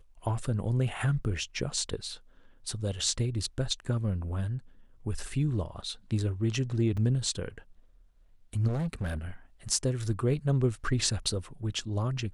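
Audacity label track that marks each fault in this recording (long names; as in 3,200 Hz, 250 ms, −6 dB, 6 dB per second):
6.970000	6.970000	drop-out 4.7 ms
8.670000	9.170000	clipping −27.5 dBFS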